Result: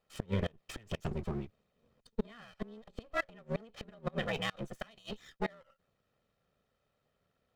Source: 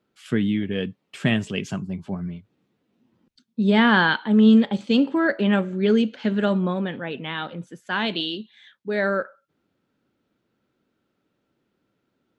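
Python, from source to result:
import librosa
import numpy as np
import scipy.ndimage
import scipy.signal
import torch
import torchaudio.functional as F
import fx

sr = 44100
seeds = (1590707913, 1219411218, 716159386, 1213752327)

p1 = fx.lower_of_two(x, sr, delay_ms=1.6)
p2 = 10.0 ** (-23.0 / 20.0) * np.tanh(p1 / 10.0 ** (-23.0 / 20.0))
p3 = p1 + F.gain(torch.from_numpy(p2), -7.0).numpy()
p4 = fx.gate_flip(p3, sr, shuts_db=-15.0, range_db=-30)
p5 = fx.stretch_grains(p4, sr, factor=0.61, grain_ms=27.0)
y = F.gain(torch.from_numpy(p5), -5.5).numpy()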